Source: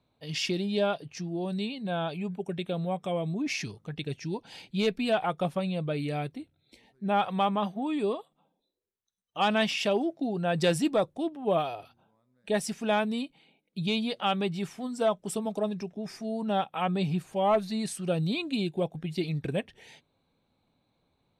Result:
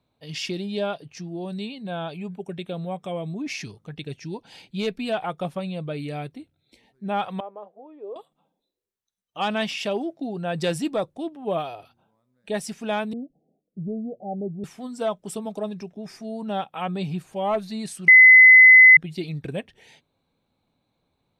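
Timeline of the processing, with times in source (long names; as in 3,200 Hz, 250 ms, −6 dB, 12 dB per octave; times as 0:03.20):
0:07.40–0:08.16: four-pole ladder band-pass 540 Hz, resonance 65%
0:13.13–0:14.64: Chebyshev low-pass filter 760 Hz, order 8
0:18.08–0:18.97: beep over 2,030 Hz −6.5 dBFS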